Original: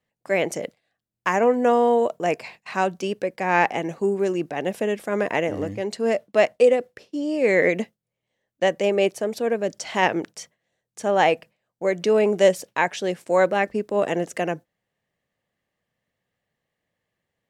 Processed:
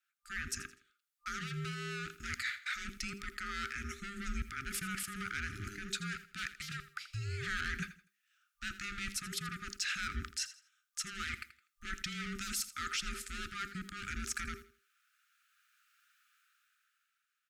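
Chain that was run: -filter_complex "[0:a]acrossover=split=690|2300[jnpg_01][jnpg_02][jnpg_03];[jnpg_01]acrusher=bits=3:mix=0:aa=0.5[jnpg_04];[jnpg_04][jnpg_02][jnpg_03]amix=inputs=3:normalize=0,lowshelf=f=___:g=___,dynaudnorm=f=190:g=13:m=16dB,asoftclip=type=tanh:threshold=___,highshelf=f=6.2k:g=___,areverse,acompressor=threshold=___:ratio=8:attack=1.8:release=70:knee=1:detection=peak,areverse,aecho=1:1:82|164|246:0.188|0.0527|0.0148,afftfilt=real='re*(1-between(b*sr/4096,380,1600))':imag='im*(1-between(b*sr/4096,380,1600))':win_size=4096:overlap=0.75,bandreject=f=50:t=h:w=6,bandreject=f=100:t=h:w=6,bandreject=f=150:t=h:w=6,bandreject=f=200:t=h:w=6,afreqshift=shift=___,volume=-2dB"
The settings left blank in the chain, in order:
500, -6, -12.5dB, 2.5, -29dB, -400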